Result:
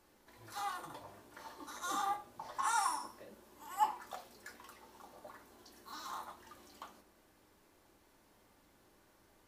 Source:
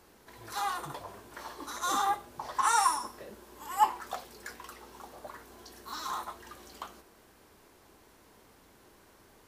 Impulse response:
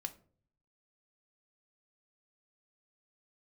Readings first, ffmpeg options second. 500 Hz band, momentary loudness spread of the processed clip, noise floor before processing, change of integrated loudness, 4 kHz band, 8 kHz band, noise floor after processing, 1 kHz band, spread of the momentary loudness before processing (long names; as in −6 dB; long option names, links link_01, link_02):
−8.5 dB, 22 LU, −60 dBFS, −7.5 dB, −8.5 dB, −8.5 dB, −68 dBFS, −7.5 dB, 21 LU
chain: -filter_complex "[1:a]atrim=start_sample=2205[link_01];[0:a][link_01]afir=irnorm=-1:irlink=0,volume=-6dB"